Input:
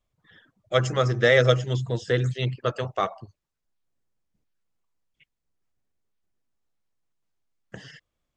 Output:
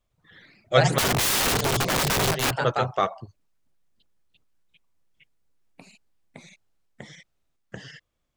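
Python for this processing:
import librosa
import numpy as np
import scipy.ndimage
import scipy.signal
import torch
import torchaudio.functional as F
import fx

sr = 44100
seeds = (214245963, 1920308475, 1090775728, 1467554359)

y = fx.echo_pitch(x, sr, ms=107, semitones=2, count=3, db_per_echo=-3.0)
y = fx.overflow_wrap(y, sr, gain_db=20.0, at=(0.98, 2.51))
y = F.gain(torch.from_numpy(y), 2.0).numpy()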